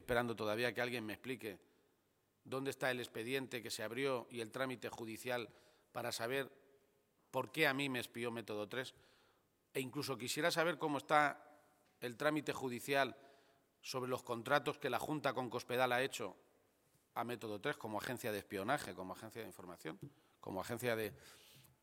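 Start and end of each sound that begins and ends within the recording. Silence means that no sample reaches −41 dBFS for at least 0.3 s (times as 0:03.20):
0:02.52–0:05.45
0:05.95–0:06.44
0:07.34–0:08.88
0:09.76–0:11.32
0:12.04–0:13.10
0:13.87–0:16.30
0:17.17–0:20.03
0:20.43–0:21.09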